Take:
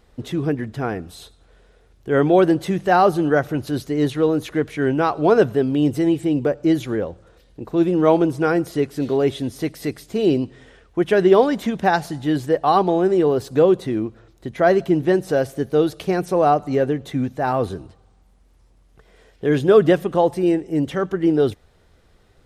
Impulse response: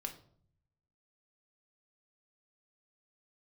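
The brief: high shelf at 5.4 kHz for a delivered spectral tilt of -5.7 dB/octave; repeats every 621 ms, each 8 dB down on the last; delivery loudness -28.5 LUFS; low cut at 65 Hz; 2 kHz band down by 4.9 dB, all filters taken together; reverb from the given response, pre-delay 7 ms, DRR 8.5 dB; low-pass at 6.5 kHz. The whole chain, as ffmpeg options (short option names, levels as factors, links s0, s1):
-filter_complex "[0:a]highpass=65,lowpass=6500,equalizer=f=2000:t=o:g=-6.5,highshelf=f=5400:g=-5,aecho=1:1:621|1242|1863|2484|3105:0.398|0.159|0.0637|0.0255|0.0102,asplit=2[s0][s1];[1:a]atrim=start_sample=2205,adelay=7[s2];[s1][s2]afir=irnorm=-1:irlink=0,volume=0.447[s3];[s0][s3]amix=inputs=2:normalize=0,volume=0.316"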